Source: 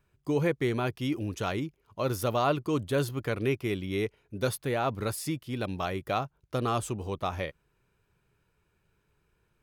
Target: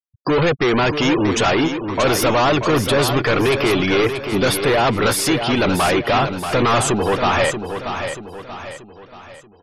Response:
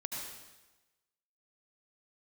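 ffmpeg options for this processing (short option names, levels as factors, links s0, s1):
-filter_complex "[0:a]asplit=2[s0][s1];[s1]highpass=f=720:p=1,volume=63.1,asoftclip=type=tanh:threshold=0.224[s2];[s0][s2]amix=inputs=2:normalize=0,lowpass=f=5500:p=1,volume=0.501,afftfilt=real='re*gte(hypot(re,im),0.0355)':imag='im*gte(hypot(re,im),0.0355)':win_size=1024:overlap=0.75,aecho=1:1:633|1266|1899|2532|3165:0.398|0.171|0.0736|0.0317|0.0136,volume=1.5"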